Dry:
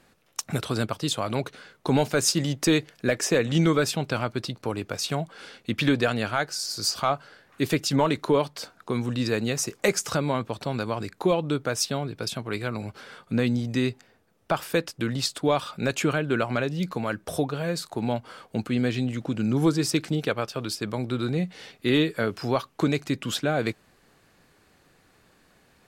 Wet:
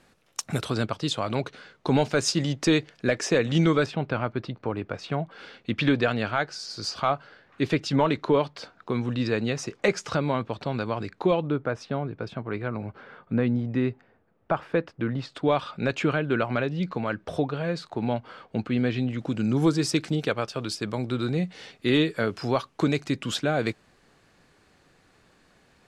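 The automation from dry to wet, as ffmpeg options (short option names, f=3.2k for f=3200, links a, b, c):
-af "asetnsamples=n=441:p=0,asendcmd='0.7 lowpass f 5900;3.86 lowpass f 2300;5.31 lowpass f 4000;11.47 lowpass f 1800;15.32 lowpass f 3600;19.19 lowpass f 8400',lowpass=11k"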